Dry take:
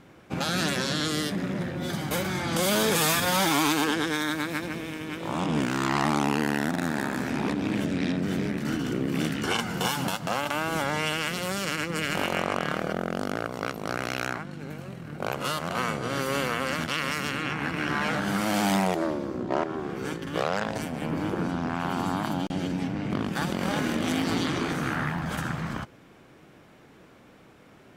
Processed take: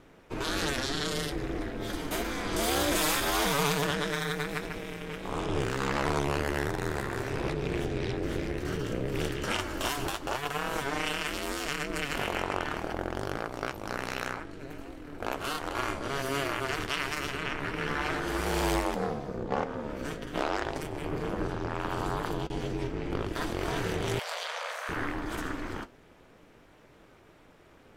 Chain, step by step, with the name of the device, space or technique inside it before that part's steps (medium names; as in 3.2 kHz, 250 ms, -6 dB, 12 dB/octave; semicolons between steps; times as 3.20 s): alien voice (ring modulator 140 Hz; flange 0.67 Hz, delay 5.8 ms, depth 6.1 ms, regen -66%); 24.19–24.89 s: steep high-pass 520 Hz 72 dB/octave; trim +3.5 dB